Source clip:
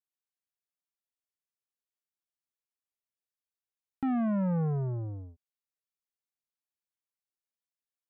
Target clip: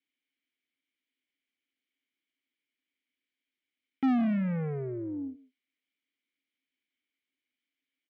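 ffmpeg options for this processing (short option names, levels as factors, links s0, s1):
-filter_complex "[0:a]asplit=3[s0][s1][s2];[s0]bandpass=f=270:t=q:w=8,volume=1[s3];[s1]bandpass=f=2290:t=q:w=8,volume=0.501[s4];[s2]bandpass=f=3010:t=q:w=8,volume=0.355[s5];[s3][s4][s5]amix=inputs=3:normalize=0,asplit=2[s6][s7];[s7]adelay=150,highpass=300,lowpass=3400,asoftclip=type=hard:threshold=0.02,volume=0.141[s8];[s6][s8]amix=inputs=2:normalize=0,asplit=2[s9][s10];[s10]highpass=f=720:p=1,volume=31.6,asoftclip=type=tanh:threshold=0.0562[s11];[s9][s11]amix=inputs=2:normalize=0,lowpass=f=1700:p=1,volume=0.501,volume=1.88"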